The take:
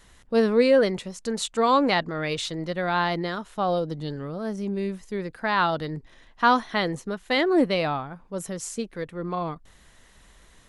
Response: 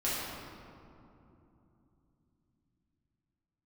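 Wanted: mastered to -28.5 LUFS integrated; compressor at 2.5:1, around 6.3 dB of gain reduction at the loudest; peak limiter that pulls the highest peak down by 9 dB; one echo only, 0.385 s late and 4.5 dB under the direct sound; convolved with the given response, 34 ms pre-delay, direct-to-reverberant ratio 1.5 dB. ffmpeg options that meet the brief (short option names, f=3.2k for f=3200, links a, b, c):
-filter_complex "[0:a]acompressor=threshold=-24dB:ratio=2.5,alimiter=limit=-22dB:level=0:latency=1,aecho=1:1:385:0.596,asplit=2[a][b];[1:a]atrim=start_sample=2205,adelay=34[c];[b][c]afir=irnorm=-1:irlink=0,volume=-9.5dB[d];[a][d]amix=inputs=2:normalize=0,volume=-1dB"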